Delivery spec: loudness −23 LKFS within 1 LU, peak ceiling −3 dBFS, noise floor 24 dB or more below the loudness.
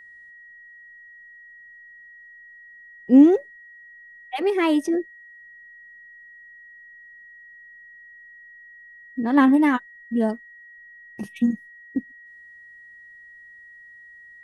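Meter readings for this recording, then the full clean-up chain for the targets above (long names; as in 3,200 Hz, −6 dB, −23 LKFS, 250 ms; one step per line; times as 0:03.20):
interfering tone 1,900 Hz; level of the tone −44 dBFS; integrated loudness −20.5 LKFS; sample peak −4.0 dBFS; target loudness −23.0 LKFS
→ notch filter 1,900 Hz, Q 30
level −2.5 dB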